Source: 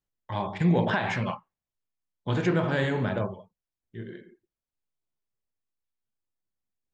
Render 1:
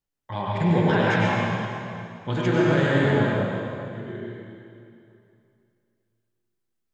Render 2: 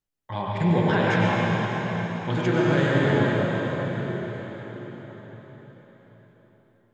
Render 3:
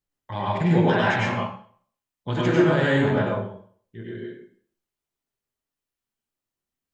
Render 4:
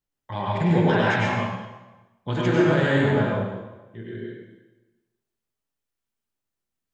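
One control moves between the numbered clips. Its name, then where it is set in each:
plate-style reverb, RT60: 2.6 s, 5.3 s, 0.51 s, 1.1 s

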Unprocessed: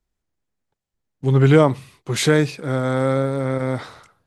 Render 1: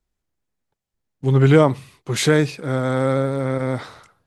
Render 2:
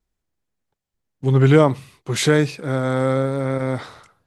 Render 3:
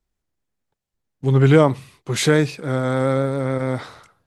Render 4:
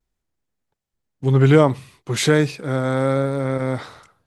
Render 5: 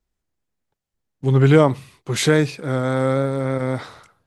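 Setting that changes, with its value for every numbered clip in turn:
vibrato, rate: 13 Hz, 1.2 Hz, 7.2 Hz, 0.4 Hz, 3.5 Hz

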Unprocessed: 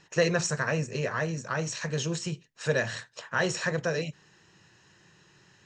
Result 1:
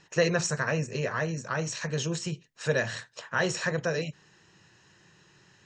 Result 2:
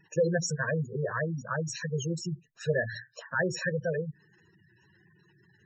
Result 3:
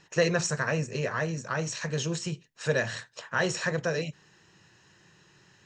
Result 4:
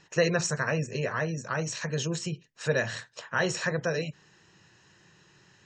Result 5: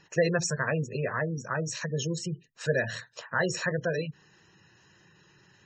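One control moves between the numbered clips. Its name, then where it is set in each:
spectral gate, under each frame's peak: -45 dB, -10 dB, -60 dB, -35 dB, -20 dB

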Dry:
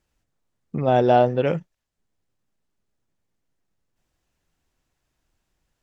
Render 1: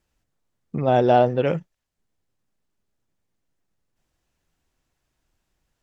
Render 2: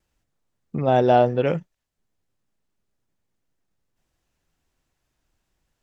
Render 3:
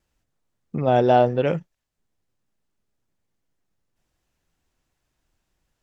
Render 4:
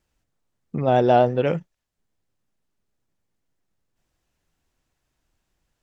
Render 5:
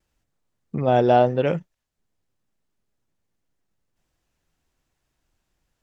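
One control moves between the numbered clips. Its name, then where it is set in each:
vibrato, rate: 14 Hz, 1.3 Hz, 2.9 Hz, 8.4 Hz, 0.85 Hz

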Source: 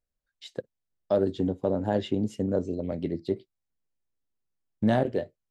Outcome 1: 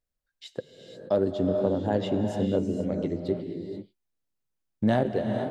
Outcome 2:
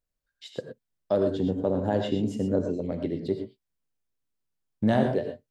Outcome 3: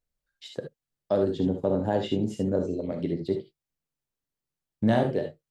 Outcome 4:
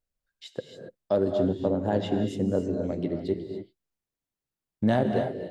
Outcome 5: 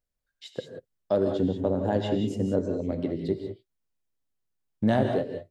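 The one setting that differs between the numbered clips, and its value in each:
gated-style reverb, gate: 510 ms, 140 ms, 90 ms, 310 ms, 210 ms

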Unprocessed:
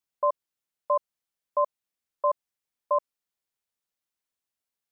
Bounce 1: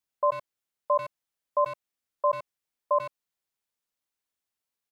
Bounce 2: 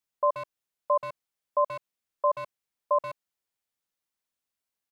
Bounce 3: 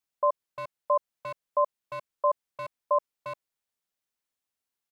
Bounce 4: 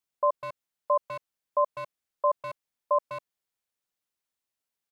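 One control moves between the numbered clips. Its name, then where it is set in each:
speakerphone echo, time: 90 ms, 130 ms, 350 ms, 200 ms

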